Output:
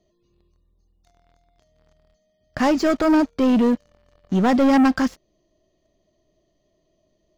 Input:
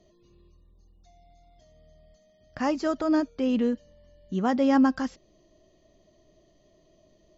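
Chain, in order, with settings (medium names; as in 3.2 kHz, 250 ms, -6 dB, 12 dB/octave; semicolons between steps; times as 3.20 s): waveshaping leveller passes 3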